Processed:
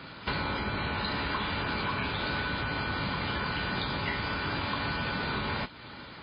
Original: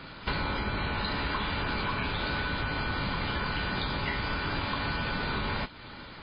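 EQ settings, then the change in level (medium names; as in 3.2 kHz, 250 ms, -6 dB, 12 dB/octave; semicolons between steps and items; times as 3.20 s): high-pass 68 Hz; 0.0 dB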